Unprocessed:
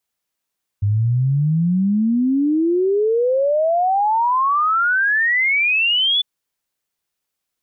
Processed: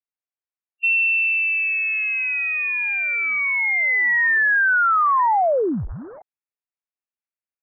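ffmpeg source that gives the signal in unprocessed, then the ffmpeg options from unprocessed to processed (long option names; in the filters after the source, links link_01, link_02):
-f lavfi -i "aevalsrc='0.2*clip(min(t,5.4-t)/0.01,0,1)*sin(2*PI*99*5.4/log(3500/99)*(exp(log(3500/99)*t/5.4)-1))':duration=5.4:sample_rate=44100"
-filter_complex "[0:a]afwtdn=0.0398,acrossover=split=110|850[link_01][link_02][link_03];[link_02]asoftclip=type=tanh:threshold=-22.5dB[link_04];[link_01][link_04][link_03]amix=inputs=3:normalize=0,lowpass=frequency=2400:width_type=q:width=0.5098,lowpass=frequency=2400:width_type=q:width=0.6013,lowpass=frequency=2400:width_type=q:width=0.9,lowpass=frequency=2400:width_type=q:width=2.563,afreqshift=-2800"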